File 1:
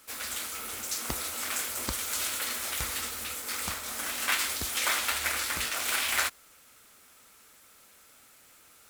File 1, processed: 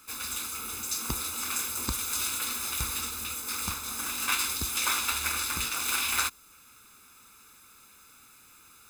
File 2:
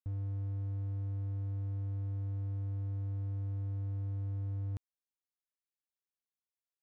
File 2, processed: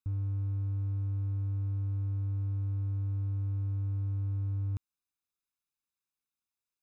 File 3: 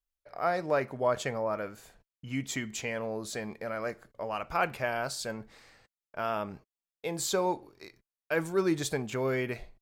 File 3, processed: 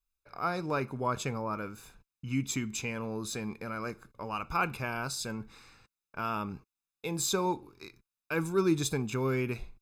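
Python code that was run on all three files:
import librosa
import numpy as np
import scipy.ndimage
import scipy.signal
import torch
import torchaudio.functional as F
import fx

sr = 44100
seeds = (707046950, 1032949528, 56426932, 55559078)

y = x + 0.69 * np.pad(x, (int(0.8 * sr / 1000.0), 0))[:len(x)]
y = fx.dynamic_eq(y, sr, hz=1700.0, q=0.96, threshold_db=-45.0, ratio=4.0, max_db=-4)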